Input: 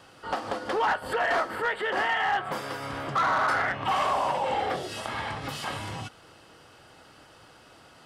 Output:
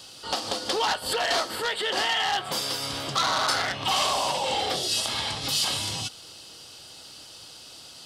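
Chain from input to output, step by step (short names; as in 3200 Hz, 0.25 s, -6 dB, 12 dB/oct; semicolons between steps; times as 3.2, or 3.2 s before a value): resonant high shelf 2700 Hz +14 dB, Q 1.5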